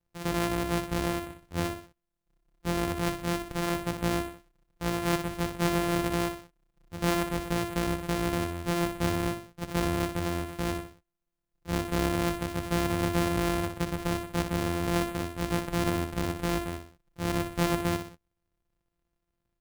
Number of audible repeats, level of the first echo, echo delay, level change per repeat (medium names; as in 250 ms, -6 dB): 3, -8.0 dB, 61 ms, -7.0 dB